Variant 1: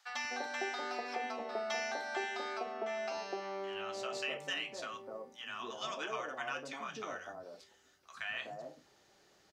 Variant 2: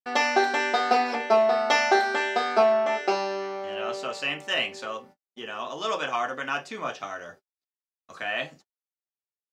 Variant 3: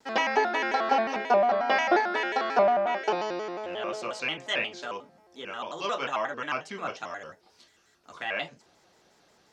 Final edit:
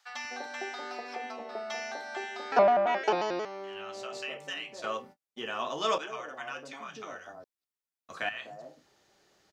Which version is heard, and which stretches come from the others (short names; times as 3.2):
1
2.52–3.45 from 3
4.84–5.98 from 2
7.44–8.29 from 2